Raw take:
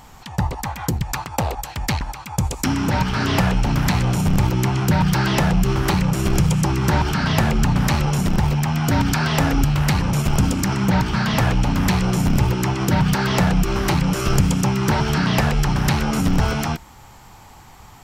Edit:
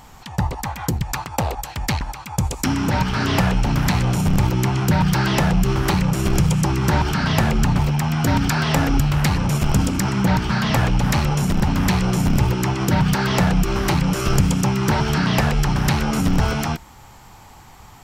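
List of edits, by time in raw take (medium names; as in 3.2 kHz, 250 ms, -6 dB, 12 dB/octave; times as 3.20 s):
7.79–8.43 s: move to 11.67 s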